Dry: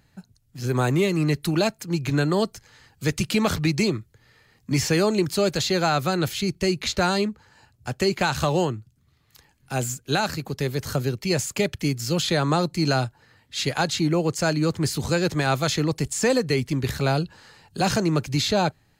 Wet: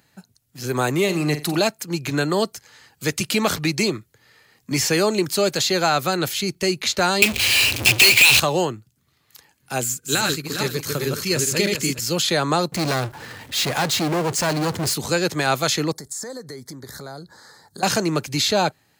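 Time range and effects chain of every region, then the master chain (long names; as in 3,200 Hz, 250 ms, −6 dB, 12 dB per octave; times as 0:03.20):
0:01.04–0:01.60: parametric band 730 Hz +8 dB 0.33 octaves + flutter between parallel walls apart 8 metres, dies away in 0.27 s
0:07.22–0:08.40: drawn EQ curve 110 Hz 0 dB, 180 Hz −24 dB, 280 Hz −11 dB, 1,400 Hz −28 dB, 2,400 Hz +13 dB, 4,200 Hz +3 dB, 11,000 Hz −11 dB + power curve on the samples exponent 0.35 + multiband upward and downward compressor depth 70%
0:09.81–0:12.00: feedback delay that plays each chunk backwards 206 ms, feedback 42%, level −2 dB + parametric band 730 Hz −11.5 dB 0.6 octaves
0:12.72–0:14.94: spectral tilt −1.5 dB per octave + hard clipping −19.5 dBFS + power curve on the samples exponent 0.5
0:15.92–0:17.83: downward compressor 5 to 1, threshold −34 dBFS + Butterworth band-reject 2,700 Hz, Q 1.4
whole clip: high-pass filter 290 Hz 6 dB per octave; high-shelf EQ 8,000 Hz +6 dB; level +3.5 dB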